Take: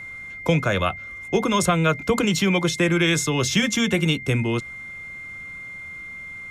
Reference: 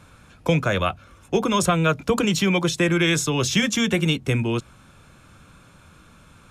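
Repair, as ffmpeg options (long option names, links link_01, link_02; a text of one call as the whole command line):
ffmpeg -i in.wav -af "bandreject=frequency=2100:width=30" out.wav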